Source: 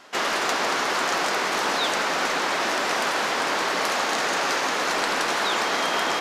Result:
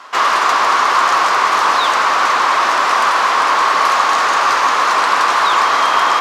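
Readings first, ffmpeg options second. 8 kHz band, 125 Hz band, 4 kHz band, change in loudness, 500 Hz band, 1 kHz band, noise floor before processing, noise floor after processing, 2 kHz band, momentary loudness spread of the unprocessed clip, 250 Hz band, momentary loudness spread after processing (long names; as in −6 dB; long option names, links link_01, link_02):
+4.0 dB, can't be measured, +5.5 dB, +10.5 dB, +4.0 dB, +14.0 dB, −26 dBFS, −15 dBFS, +8.5 dB, 1 LU, 0.0 dB, 1 LU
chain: -filter_complex "[0:a]asplit=2[link_01][link_02];[link_02]highpass=frequency=720:poles=1,volume=12dB,asoftclip=type=tanh:threshold=-8dB[link_03];[link_01][link_03]amix=inputs=2:normalize=0,lowpass=frequency=6700:poles=1,volume=-6dB,equalizer=frequency=1100:width_type=o:width=0.56:gain=13"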